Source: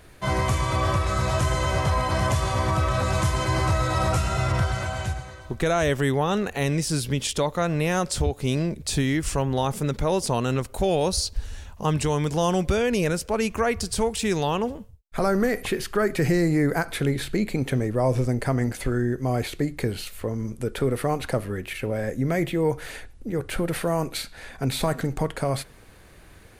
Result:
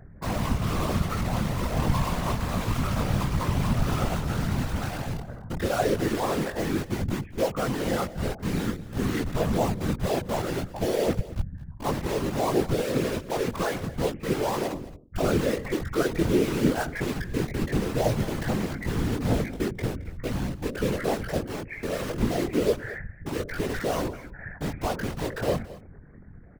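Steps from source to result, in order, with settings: resonances exaggerated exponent 2; steep low-pass 2.1 kHz 72 dB/octave; de-hum 239.3 Hz, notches 36; in parallel at -3 dB: integer overflow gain 26.5 dB; on the sum: chorus voices 2, 0.27 Hz, delay 20 ms, depth 4.1 ms; whisper effect; on a send: delay 219 ms -18 dB

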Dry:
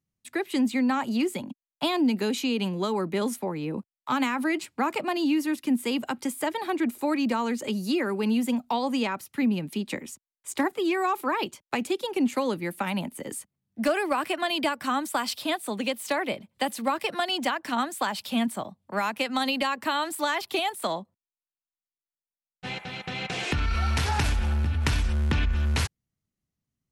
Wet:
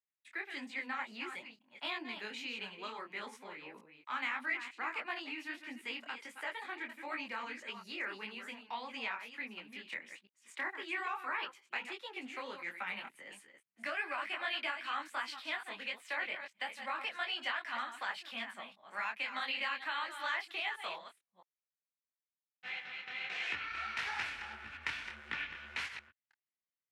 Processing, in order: chunks repeated in reverse 223 ms, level -9 dB; band-pass filter 2 kHz, Q 1.8; detune thickener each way 54 cents

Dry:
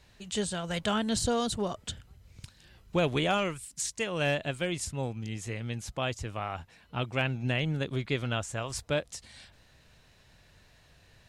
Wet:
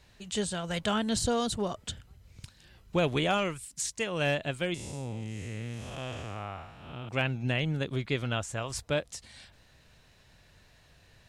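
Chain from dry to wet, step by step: 4.74–7.09 s: spectral blur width 274 ms

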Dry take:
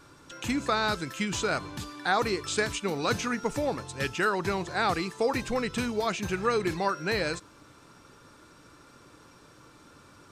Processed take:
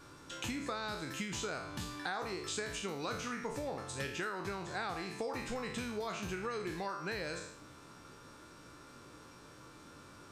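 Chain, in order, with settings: spectral sustain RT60 0.51 s; compression 6:1, threshold -34 dBFS, peak gain reduction 14 dB; trim -2.5 dB

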